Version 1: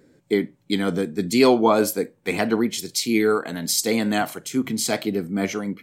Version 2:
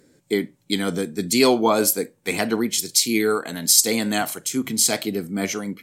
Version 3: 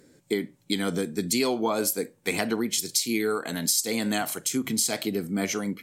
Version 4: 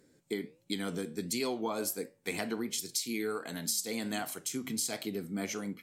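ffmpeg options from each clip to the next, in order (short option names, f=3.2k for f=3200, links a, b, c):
-af "equalizer=f=10k:t=o:w=2.3:g=10.5,volume=-1.5dB"
-af "acompressor=threshold=-23dB:ratio=4"
-af "flanger=delay=9.7:depth=3.9:regen=-82:speed=1.4:shape=sinusoidal,volume=-4dB"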